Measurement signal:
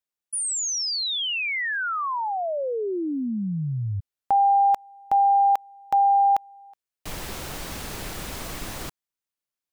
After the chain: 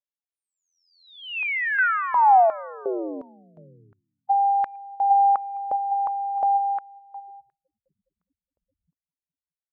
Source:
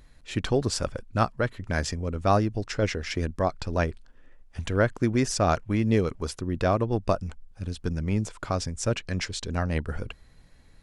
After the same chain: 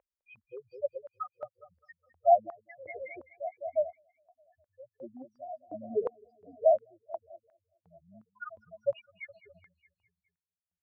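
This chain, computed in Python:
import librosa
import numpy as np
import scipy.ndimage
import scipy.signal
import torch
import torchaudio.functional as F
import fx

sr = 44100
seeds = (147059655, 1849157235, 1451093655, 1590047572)

y = fx.spec_topn(x, sr, count=2)
y = fx.echo_feedback(y, sr, ms=207, feedback_pct=57, wet_db=-16.5)
y = fx.over_compress(y, sr, threshold_db=-25.0, ratio=-1.0)
y = scipy.signal.sosfilt(scipy.signal.cheby1(4, 1.0, 2500.0, 'lowpass', fs=sr, output='sos'), y)
y = fx.filter_held_highpass(y, sr, hz=2.8, low_hz=550.0, high_hz=1700.0)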